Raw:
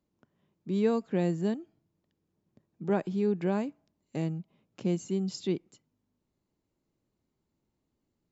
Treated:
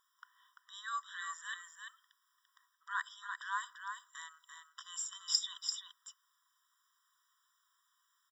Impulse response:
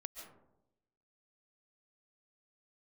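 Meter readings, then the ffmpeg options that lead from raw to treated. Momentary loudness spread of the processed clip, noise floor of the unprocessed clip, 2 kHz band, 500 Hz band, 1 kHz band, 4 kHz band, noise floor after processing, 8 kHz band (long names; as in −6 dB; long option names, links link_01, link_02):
20 LU, −82 dBFS, +5.5 dB, below −40 dB, 0.0 dB, +9.0 dB, −79 dBFS, can't be measured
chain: -af "areverse,acompressor=threshold=-35dB:ratio=12,areverse,aeval=exprs='0.0422*(cos(1*acos(clip(val(0)/0.0422,-1,1)))-cos(1*PI/2))+0.00335*(cos(2*acos(clip(val(0)/0.0422,-1,1)))-cos(2*PI/2))':channel_layout=same,aecho=1:1:341:0.501,afftfilt=real='re*eq(mod(floor(b*sr/1024/990),2),1)':imag='im*eq(mod(floor(b*sr/1024/990),2),1)':win_size=1024:overlap=0.75,volume=16dB"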